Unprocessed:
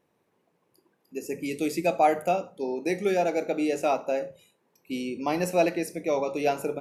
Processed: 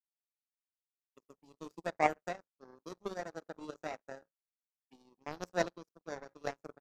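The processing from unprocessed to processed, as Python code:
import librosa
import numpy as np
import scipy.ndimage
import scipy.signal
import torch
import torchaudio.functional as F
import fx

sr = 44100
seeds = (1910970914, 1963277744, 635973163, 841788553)

y = fx.env_phaser(x, sr, low_hz=210.0, high_hz=2200.0, full_db=-30.0)
y = fx.power_curve(y, sr, exponent=3.0)
y = y * 10.0 ** (1.0 / 20.0)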